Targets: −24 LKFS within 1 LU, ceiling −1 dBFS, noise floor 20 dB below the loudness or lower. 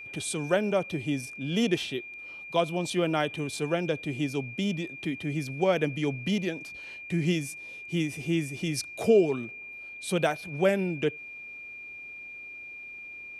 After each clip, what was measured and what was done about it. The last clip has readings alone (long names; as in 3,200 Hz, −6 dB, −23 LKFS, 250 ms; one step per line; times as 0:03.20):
interfering tone 2,400 Hz; level of the tone −40 dBFS; integrated loudness −29.0 LKFS; sample peak −10.5 dBFS; target loudness −24.0 LKFS
→ notch filter 2,400 Hz, Q 30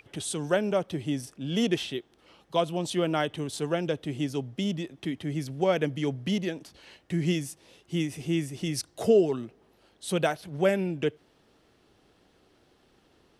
interfering tone none found; integrated loudness −29.0 LKFS; sample peak −10.5 dBFS; target loudness −24.0 LKFS
→ level +5 dB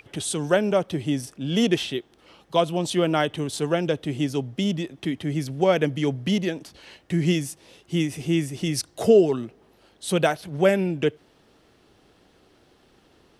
integrated loudness −24.0 LKFS; sample peak −5.5 dBFS; background noise floor −60 dBFS